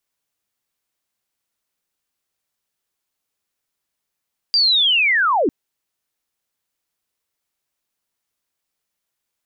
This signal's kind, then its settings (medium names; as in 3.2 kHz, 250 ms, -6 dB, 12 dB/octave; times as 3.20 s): sweep linear 4.8 kHz -> 240 Hz -12 dBFS -> -14 dBFS 0.95 s